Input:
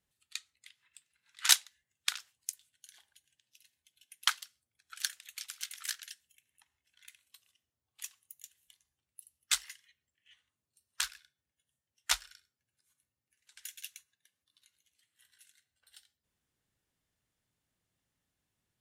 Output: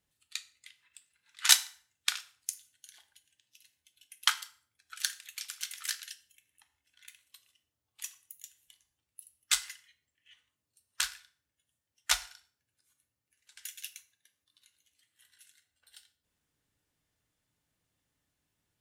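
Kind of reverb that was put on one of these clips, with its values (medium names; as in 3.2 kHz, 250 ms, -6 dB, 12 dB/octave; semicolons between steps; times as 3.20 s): FDN reverb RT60 0.47 s, low-frequency decay 0.9×, high-frequency decay 0.85×, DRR 9 dB; trim +2 dB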